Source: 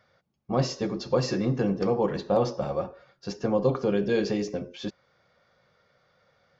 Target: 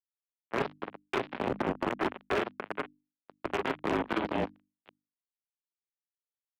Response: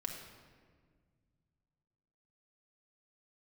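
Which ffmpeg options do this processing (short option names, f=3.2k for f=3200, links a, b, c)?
-filter_complex "[0:a]acrossover=split=430|630[a][b][c];[b]aeval=exprs='(mod(16.8*val(0)+1,2)-1)/16.8':c=same[d];[a][d][c]amix=inputs=3:normalize=0,aecho=1:1:20|39|63:0.501|0.422|0.168,asplit=2[e][f];[1:a]atrim=start_sample=2205,adelay=48[g];[f][g]afir=irnorm=-1:irlink=0,volume=-9.5dB[h];[e][h]amix=inputs=2:normalize=0,acrusher=bits=2:mix=0:aa=0.5,highpass=f=340:t=q:w=0.5412,highpass=f=340:t=q:w=1.307,lowpass=f=3.3k:t=q:w=0.5176,lowpass=f=3.3k:t=q:w=0.7071,lowpass=f=3.3k:t=q:w=1.932,afreqshift=-130,alimiter=limit=-21.5dB:level=0:latency=1:release=343,volume=27.5dB,asoftclip=hard,volume=-27.5dB,bandreject=f=50:t=h:w=6,bandreject=f=100:t=h:w=6,bandreject=f=150:t=h:w=6,bandreject=f=200:t=h:w=6,bandreject=f=250:t=h:w=6,bandreject=f=300:t=h:w=6,volume=5dB"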